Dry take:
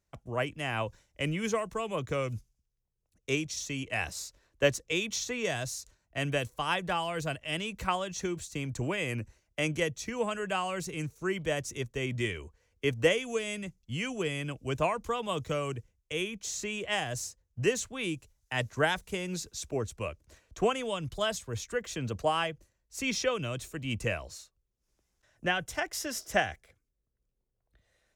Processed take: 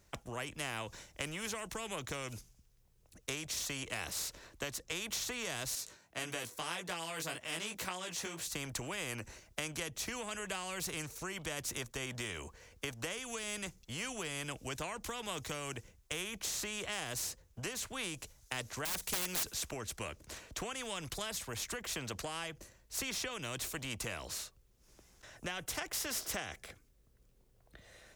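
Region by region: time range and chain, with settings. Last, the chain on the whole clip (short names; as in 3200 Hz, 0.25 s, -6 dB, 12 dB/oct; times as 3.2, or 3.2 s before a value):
5.75–8.46 HPF 190 Hz + chorus 1.8 Hz, delay 16.5 ms, depth 2.5 ms
18.85–19.54 high shelf 2600 Hz +10.5 dB + wrapped overs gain 25.5 dB
whole clip: compressor, threshold -35 dBFS; spectral compressor 2:1; gain +1 dB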